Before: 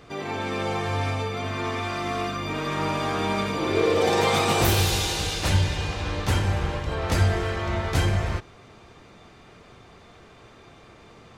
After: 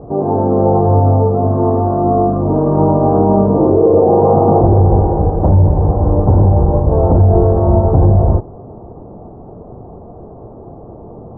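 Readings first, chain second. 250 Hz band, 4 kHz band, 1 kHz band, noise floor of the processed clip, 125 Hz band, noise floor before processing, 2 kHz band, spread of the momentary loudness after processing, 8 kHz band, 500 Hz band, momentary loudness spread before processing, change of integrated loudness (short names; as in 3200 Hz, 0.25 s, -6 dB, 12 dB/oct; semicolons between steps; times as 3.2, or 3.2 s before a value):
+15.5 dB, under -40 dB, +11.5 dB, -35 dBFS, +14.5 dB, -50 dBFS, under -20 dB, 4 LU, under -40 dB, +15.0 dB, 8 LU, +13.0 dB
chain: steep low-pass 840 Hz 36 dB/oct; maximiser +18.5 dB; gain -1 dB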